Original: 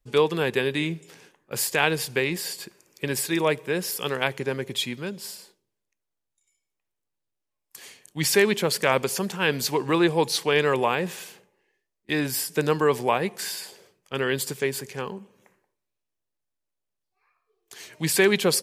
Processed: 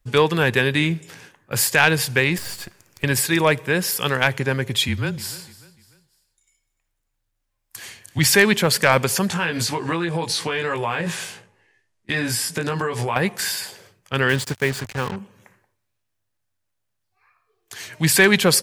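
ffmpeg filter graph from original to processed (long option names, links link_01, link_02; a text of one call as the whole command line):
ffmpeg -i in.wav -filter_complex "[0:a]asettb=1/sr,asplit=3[link_01][link_02][link_03];[link_01]atrim=end=2.384[link_04];[link_02]atrim=start=2.38:end=3.04,asetpts=PTS-STARTPTS,afade=type=in:duration=0.004:curve=qsin,afade=type=out:start_time=0.656:duration=0.004:curve=qsin,aeval=exprs='if(lt(val(0),0),0.251*val(0),val(0))':channel_layout=same,deesser=0.65[link_05];[link_03]atrim=start=3.036[link_06];[link_04][link_05]acrossfade=duration=0.004:curve1=hsin:curve2=qsin[link_07];[link_07][link_06]acrossfade=duration=0.004:curve1=qsin:curve2=hsin,asettb=1/sr,asplit=3[link_08][link_09][link_10];[link_08]atrim=end=4.884[link_11];[link_09]atrim=start=4.88:end=8.19,asetpts=PTS-STARTPTS,afade=type=in:duration=0.004:curve=qsin,afade=type=out:start_time=3.306:duration=0.004:curve=qsin,afreqshift=-28,aecho=1:1:296|592|888:0.119|0.0475|0.019,atrim=end_sample=145971[link_12];[link_10]atrim=start=8.186[link_13];[link_11][link_12]acrossfade=duration=0.004:curve1=hsin:curve2=qsin[link_14];[link_14][link_13]acrossfade=duration=0.004:curve1=qsin:curve2=hsin,asettb=1/sr,asplit=3[link_15][link_16][link_17];[link_15]atrim=end=9.284[link_18];[link_16]atrim=start=9.28:end=13.16,asetpts=PTS-STARTPTS,afade=type=in:duration=0.004:curve=qsin,afade=type=out:start_time=3.876:duration=0.004:curve=qsin,lowpass=frequency=11000:width=0.5412,lowpass=frequency=11000:width=1.3066,asplit=2[link_19][link_20];[link_20]adelay=18,volume=-2.5dB[link_21];[link_19][link_21]amix=inputs=2:normalize=0,atrim=end_sample=171108,acompressor=threshold=-26dB:ratio=6:attack=3.2:release=140:knee=1:detection=peak[link_22];[link_17]atrim=start=13.156[link_23];[link_18][link_22]acrossfade=duration=0.004:curve1=hsin:curve2=qsin[link_24];[link_24][link_23]acrossfade=duration=0.004:curve1=qsin:curve2=hsin,asettb=1/sr,asplit=3[link_25][link_26][link_27];[link_25]atrim=end=14.294[link_28];[link_26]atrim=start=14.29:end=15.16,asetpts=PTS-STARTPTS,afade=type=in:duration=0.004:curve=qsin,afade=type=out:start_time=0.866:duration=0.004:curve=qsin,lowpass=8000,highshelf=frequency=4700:gain=-6.5,acrusher=bits=5:mix=0:aa=0.5[link_29];[link_27]atrim=start=15.156[link_30];[link_28][link_29]acrossfade=duration=0.004:curve1=hsin:curve2=qsin[link_31];[link_31][link_30]acrossfade=duration=0.004:curve1=qsin:curve2=hsin,equalizer=frequency=100:width_type=o:width=0.67:gain=12,equalizer=frequency=400:width_type=o:width=0.67:gain=-5,equalizer=frequency=1600:width_type=o:width=0.67:gain=4,acontrast=68" out.wav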